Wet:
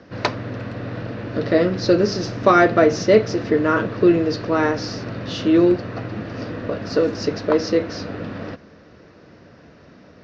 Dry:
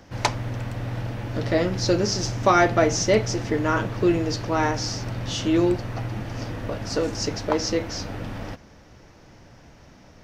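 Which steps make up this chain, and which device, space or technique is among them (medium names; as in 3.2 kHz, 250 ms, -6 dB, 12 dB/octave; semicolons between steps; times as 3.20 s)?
guitar cabinet (cabinet simulation 110–4300 Hz, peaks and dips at 120 Hz -6 dB, 450 Hz +3 dB, 850 Hz -10 dB, 2.2 kHz -5 dB, 3.2 kHz -7 dB); trim +5.5 dB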